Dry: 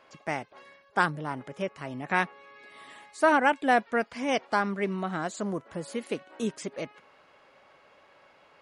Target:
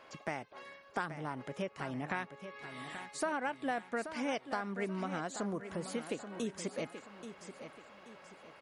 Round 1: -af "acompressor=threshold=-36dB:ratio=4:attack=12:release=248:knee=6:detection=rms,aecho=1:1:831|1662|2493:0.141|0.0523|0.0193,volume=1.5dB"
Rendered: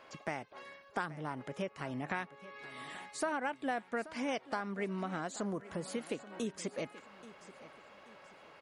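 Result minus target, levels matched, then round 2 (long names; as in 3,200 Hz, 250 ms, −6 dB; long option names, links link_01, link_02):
echo-to-direct −6.5 dB
-af "acompressor=threshold=-36dB:ratio=4:attack=12:release=248:knee=6:detection=rms,aecho=1:1:831|1662|2493|3324:0.299|0.11|0.0409|0.0151,volume=1.5dB"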